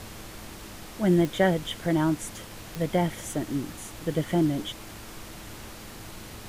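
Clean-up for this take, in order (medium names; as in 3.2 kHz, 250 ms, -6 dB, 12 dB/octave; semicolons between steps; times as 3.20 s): de-click; de-hum 107.5 Hz, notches 3; noise print and reduce 28 dB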